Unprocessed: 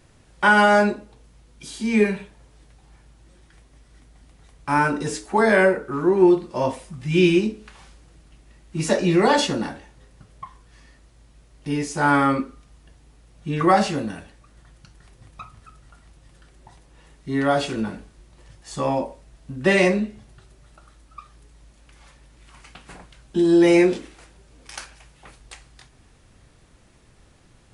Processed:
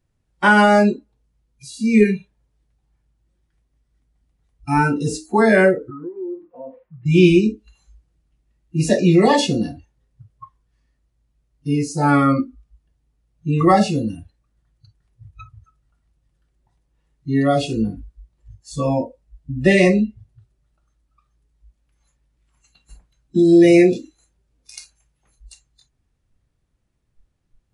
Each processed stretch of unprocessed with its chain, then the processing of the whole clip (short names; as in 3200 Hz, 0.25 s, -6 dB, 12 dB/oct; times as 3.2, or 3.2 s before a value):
5.9–7.06 LPF 1900 Hz 24 dB/oct + tilt +3.5 dB/oct + compressor 4:1, threshold -31 dBFS
whole clip: spectral noise reduction 24 dB; low shelf 210 Hz +9.5 dB; gain +1.5 dB